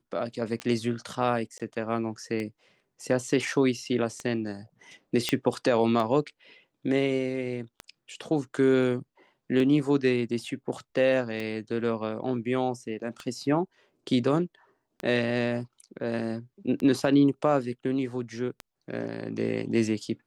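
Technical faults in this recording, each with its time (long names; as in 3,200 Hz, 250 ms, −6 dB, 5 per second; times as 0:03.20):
scratch tick 33 1/3 rpm −20 dBFS
0:01.58–0:01.60: drop-out 17 ms
0:05.29: click −10 dBFS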